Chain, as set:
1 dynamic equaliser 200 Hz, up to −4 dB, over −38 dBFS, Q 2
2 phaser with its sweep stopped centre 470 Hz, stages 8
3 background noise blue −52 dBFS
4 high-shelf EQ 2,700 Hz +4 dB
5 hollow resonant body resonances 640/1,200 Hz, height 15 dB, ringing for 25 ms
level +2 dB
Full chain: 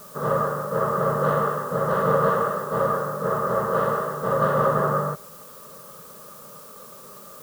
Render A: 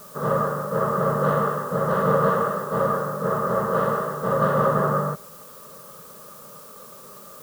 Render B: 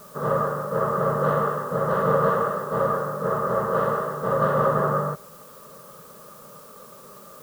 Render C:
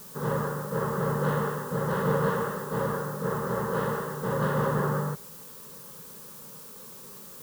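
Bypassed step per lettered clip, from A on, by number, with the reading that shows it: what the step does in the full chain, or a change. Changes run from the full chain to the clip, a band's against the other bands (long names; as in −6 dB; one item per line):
1, 250 Hz band +3.0 dB
4, change in momentary loudness spread −16 LU
5, 1 kHz band −8.0 dB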